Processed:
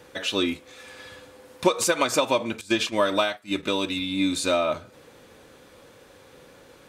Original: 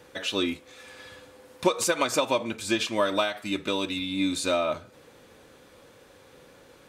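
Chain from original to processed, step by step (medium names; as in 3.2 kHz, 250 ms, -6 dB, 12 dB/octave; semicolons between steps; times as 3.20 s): 2.61–3.63 s: gate -31 dBFS, range -15 dB; trim +2.5 dB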